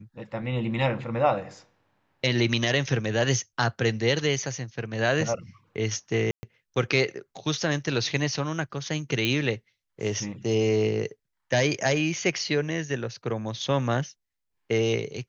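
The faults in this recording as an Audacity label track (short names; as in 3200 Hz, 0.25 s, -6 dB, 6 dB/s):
6.310000	6.430000	gap 0.12 s
9.250000	9.250000	pop -11 dBFS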